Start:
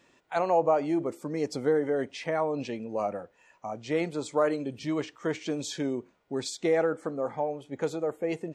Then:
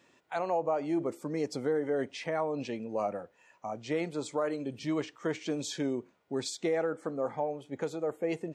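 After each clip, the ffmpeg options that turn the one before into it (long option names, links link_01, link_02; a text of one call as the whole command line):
ffmpeg -i in.wav -af "highpass=75,alimiter=limit=-19.5dB:level=0:latency=1:release=318,volume=-1.5dB" out.wav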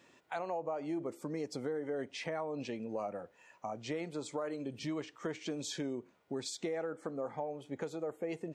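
ffmpeg -i in.wav -af "acompressor=threshold=-39dB:ratio=2.5,volume=1dB" out.wav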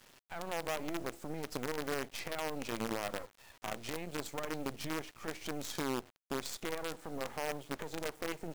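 ffmpeg -i in.wav -af "alimiter=level_in=10.5dB:limit=-24dB:level=0:latency=1:release=56,volume=-10.5dB,acrusher=bits=7:dc=4:mix=0:aa=0.000001,volume=5dB" out.wav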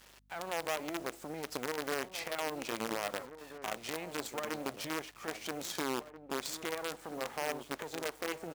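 ffmpeg -i in.wav -filter_complex "[0:a]highpass=frequency=330:poles=1,aeval=exprs='val(0)+0.000316*(sin(2*PI*50*n/s)+sin(2*PI*2*50*n/s)/2+sin(2*PI*3*50*n/s)/3+sin(2*PI*4*50*n/s)/4+sin(2*PI*5*50*n/s)/5)':channel_layout=same,asplit=2[link_01][link_02];[link_02]adelay=1633,volume=-11dB,highshelf=frequency=4000:gain=-36.7[link_03];[link_01][link_03]amix=inputs=2:normalize=0,volume=2.5dB" out.wav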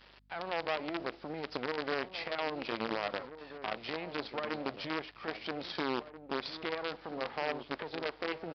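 ffmpeg -i in.wav -af "aresample=11025,aresample=44100,volume=1.5dB" out.wav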